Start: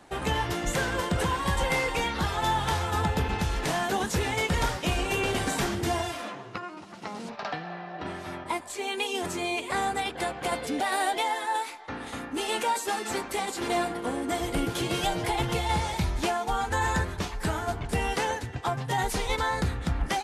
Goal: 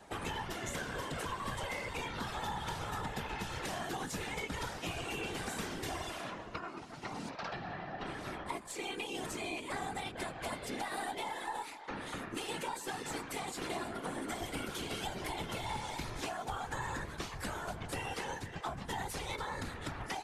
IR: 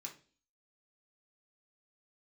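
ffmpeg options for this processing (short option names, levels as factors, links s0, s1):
-filter_complex "[0:a]afftfilt=real='hypot(re,im)*cos(2*PI*random(0))':imag='hypot(re,im)*sin(2*PI*random(1))':win_size=512:overlap=0.75,acrossover=split=300|810[s0][s1][s2];[s0]acompressor=threshold=0.00447:ratio=4[s3];[s1]acompressor=threshold=0.00316:ratio=4[s4];[s2]acompressor=threshold=0.00631:ratio=4[s5];[s3][s4][s5]amix=inputs=3:normalize=0,aeval=exprs='0.0422*(cos(1*acos(clip(val(0)/0.0422,-1,1)))-cos(1*PI/2))+0.00422*(cos(2*acos(clip(val(0)/0.0422,-1,1)))-cos(2*PI/2))':c=same,volume=1.41"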